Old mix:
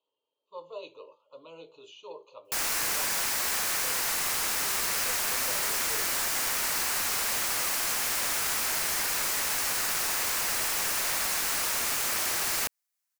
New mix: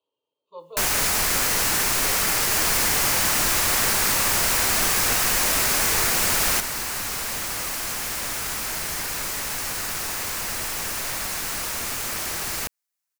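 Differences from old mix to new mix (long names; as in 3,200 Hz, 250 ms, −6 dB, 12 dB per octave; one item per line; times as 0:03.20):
first sound: unmuted
master: add low-shelf EQ 250 Hz +11.5 dB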